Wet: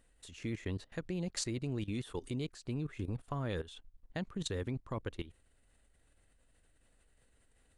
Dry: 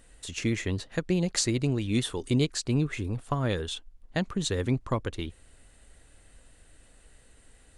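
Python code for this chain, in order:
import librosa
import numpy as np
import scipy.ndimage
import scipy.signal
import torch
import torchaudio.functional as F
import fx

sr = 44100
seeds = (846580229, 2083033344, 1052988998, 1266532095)

y = fx.peak_eq(x, sr, hz=6400.0, db=-3.5, octaves=1.5)
y = fx.level_steps(y, sr, step_db=16)
y = y * librosa.db_to_amplitude(-4.0)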